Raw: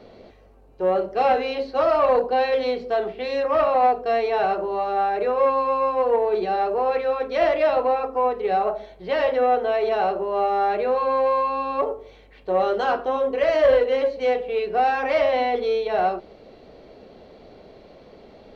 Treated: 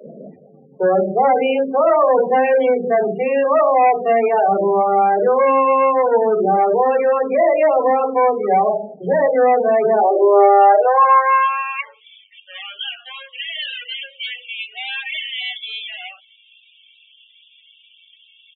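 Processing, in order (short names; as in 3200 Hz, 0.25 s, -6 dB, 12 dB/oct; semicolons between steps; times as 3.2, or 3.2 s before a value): downsampling 8000 Hz; in parallel at -2 dB: compressor 6:1, threshold -30 dBFS, peak gain reduction 15.5 dB; on the sum: sample leveller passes 2; high-pass sweep 170 Hz -> 3100 Hz, 9.71–12.06; loudest bins only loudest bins 16; notches 60/120/180/240/300/360/420/480 Hz; bands offset in time highs, lows 30 ms, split 340 Hz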